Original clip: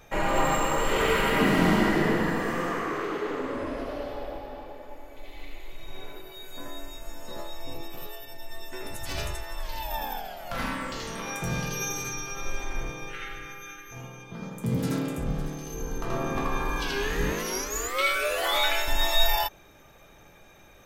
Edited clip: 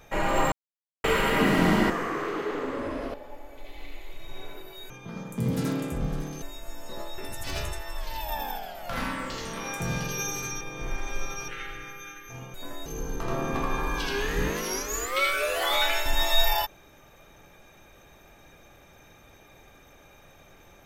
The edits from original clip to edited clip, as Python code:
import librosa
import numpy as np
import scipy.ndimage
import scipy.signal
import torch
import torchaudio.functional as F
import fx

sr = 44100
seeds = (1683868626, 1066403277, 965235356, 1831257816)

y = fx.edit(x, sr, fx.silence(start_s=0.52, length_s=0.52),
    fx.cut(start_s=1.9, length_s=0.76),
    fx.cut(start_s=3.9, length_s=0.83),
    fx.swap(start_s=6.49, length_s=0.32, other_s=14.16, other_length_s=1.52),
    fx.cut(start_s=7.57, length_s=1.23),
    fx.reverse_span(start_s=12.23, length_s=0.87), tone=tone)